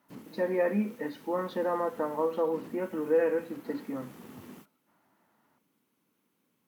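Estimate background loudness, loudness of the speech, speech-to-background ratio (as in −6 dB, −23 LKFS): −51.0 LKFS, −31.0 LKFS, 20.0 dB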